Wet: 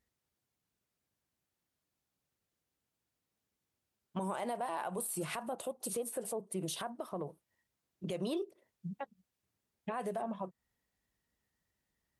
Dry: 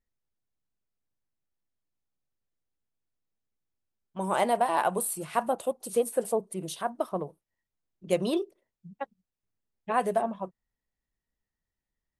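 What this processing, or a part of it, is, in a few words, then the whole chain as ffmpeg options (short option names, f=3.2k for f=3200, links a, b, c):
podcast mastering chain: -af "highpass=66,deesser=0.5,acompressor=threshold=-40dB:ratio=2.5,alimiter=level_in=10.5dB:limit=-24dB:level=0:latency=1:release=54,volume=-10.5dB,volume=6.5dB" -ar 44100 -c:a libmp3lame -b:a 96k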